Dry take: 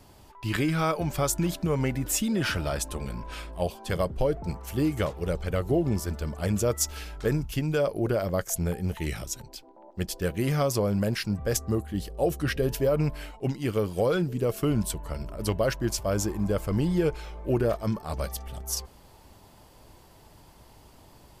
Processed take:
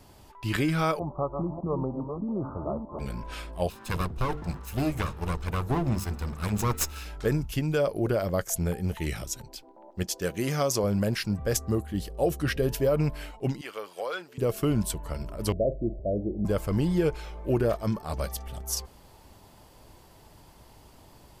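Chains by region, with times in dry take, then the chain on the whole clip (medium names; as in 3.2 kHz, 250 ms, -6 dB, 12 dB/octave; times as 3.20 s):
0.99–2.99 s: chunks repeated in reverse 310 ms, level -6 dB + steep low-pass 1.2 kHz 96 dB/octave + tilt EQ +2 dB/octave
3.69–7.05 s: comb filter that takes the minimum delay 0.77 ms + hum notches 50/100/150/200/250/300/350/400/450 Hz
10.03–10.84 s: high-pass 180 Hz 6 dB/octave + peaking EQ 6.3 kHz +7 dB 0.51 oct
13.61–14.38 s: high-pass 840 Hz + treble shelf 5.7 kHz -8.5 dB
15.52–16.45 s: steep low-pass 710 Hz 96 dB/octave + dynamic bell 120 Hz, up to -5 dB, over -43 dBFS, Q 1.7 + flutter echo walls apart 7.5 m, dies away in 0.2 s
whole clip: none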